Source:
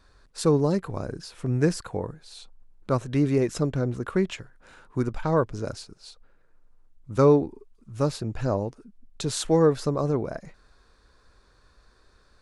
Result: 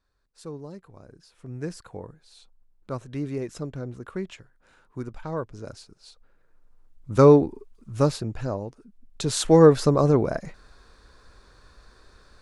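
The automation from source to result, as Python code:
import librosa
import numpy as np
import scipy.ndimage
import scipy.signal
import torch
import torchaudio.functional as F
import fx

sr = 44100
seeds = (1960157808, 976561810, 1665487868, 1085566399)

y = fx.gain(x, sr, db=fx.line((0.99, -17.0), (1.91, -8.0), (5.5, -8.0), (7.13, 4.0), (8.02, 4.0), (8.59, -5.0), (9.64, 6.0)))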